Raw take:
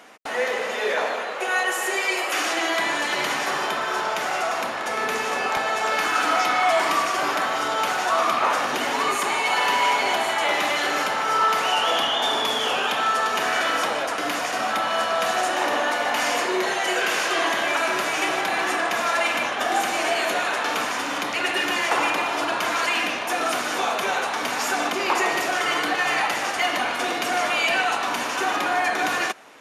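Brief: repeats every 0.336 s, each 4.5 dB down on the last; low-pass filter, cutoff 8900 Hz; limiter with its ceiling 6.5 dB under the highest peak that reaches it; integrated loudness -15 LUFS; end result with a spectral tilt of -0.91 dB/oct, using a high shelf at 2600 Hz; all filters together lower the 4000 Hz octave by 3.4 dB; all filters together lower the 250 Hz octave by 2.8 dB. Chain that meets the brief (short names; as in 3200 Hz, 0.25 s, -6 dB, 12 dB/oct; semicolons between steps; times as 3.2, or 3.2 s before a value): LPF 8900 Hz; bell 250 Hz -4 dB; high shelf 2600 Hz +4 dB; bell 4000 Hz -8.5 dB; limiter -16.5 dBFS; feedback echo 0.336 s, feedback 60%, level -4.5 dB; gain +8 dB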